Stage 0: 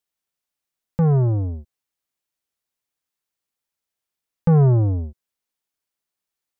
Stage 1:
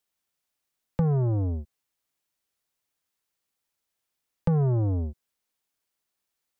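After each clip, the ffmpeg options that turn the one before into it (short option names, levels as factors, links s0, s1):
-filter_complex "[0:a]acrossover=split=220|850[s0][s1][s2];[s0]acompressor=threshold=0.0398:ratio=4[s3];[s1]acompressor=threshold=0.02:ratio=4[s4];[s2]acompressor=threshold=0.00355:ratio=4[s5];[s3][s4][s5]amix=inputs=3:normalize=0,volume=1.33"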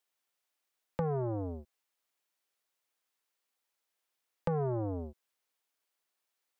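-af "bass=f=250:g=-14,treble=f=4000:g=-3"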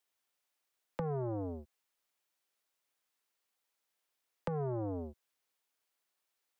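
-filter_complex "[0:a]acrossover=split=110|300[s0][s1][s2];[s0]acompressor=threshold=0.00355:ratio=4[s3];[s1]acompressor=threshold=0.0112:ratio=4[s4];[s2]acompressor=threshold=0.0141:ratio=4[s5];[s3][s4][s5]amix=inputs=3:normalize=0"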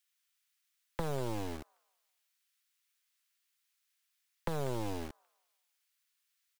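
-filter_complex "[0:a]acrossover=split=1300[s0][s1];[s0]acrusher=bits=5:dc=4:mix=0:aa=0.000001[s2];[s1]aecho=1:1:194|388|582|776:0.376|0.132|0.046|0.0161[s3];[s2][s3]amix=inputs=2:normalize=0,volume=1.58"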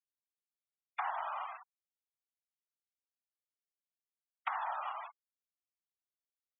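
-af "highpass=f=530:t=q:w=0.5412,highpass=f=530:t=q:w=1.307,lowpass=f=3300:t=q:w=0.5176,lowpass=f=3300:t=q:w=0.7071,lowpass=f=3300:t=q:w=1.932,afreqshift=320,afftfilt=real='hypot(re,im)*cos(2*PI*random(0))':imag='hypot(re,im)*sin(2*PI*random(1))':win_size=512:overlap=0.75,afftfilt=real='re*gte(hypot(re,im),0.00316)':imag='im*gte(hypot(re,im),0.00316)':win_size=1024:overlap=0.75,volume=3.35"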